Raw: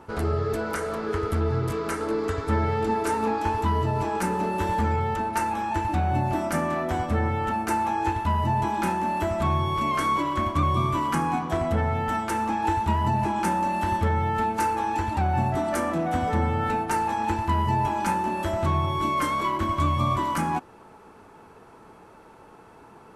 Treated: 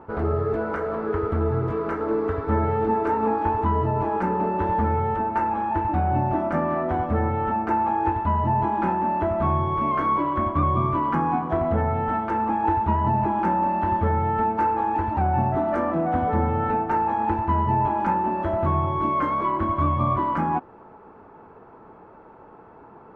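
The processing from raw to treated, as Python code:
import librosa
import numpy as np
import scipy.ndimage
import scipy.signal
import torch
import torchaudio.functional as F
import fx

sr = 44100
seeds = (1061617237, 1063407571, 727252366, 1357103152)

y = scipy.signal.sosfilt(scipy.signal.butter(2, 1300.0, 'lowpass', fs=sr, output='sos'), x)
y = fx.low_shelf(y, sr, hz=240.0, db=-4.0)
y = F.gain(torch.from_numpy(y), 4.0).numpy()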